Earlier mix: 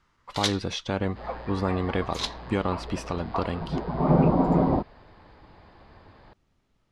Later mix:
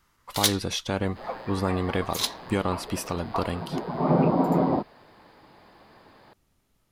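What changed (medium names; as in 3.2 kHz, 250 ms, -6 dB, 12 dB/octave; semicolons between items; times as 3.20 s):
second sound: add high-pass 160 Hz 12 dB/octave; master: remove distance through air 100 m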